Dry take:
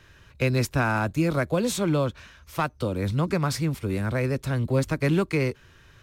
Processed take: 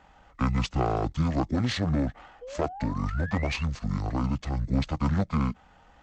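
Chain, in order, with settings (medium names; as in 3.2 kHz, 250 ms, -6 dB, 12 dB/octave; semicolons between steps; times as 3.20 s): painted sound rise, 2.41–3.63 s, 950–5600 Hz -40 dBFS; valve stage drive 16 dB, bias 0.55; bass shelf 130 Hz -8 dB; pitch shift -12 st; trim +2.5 dB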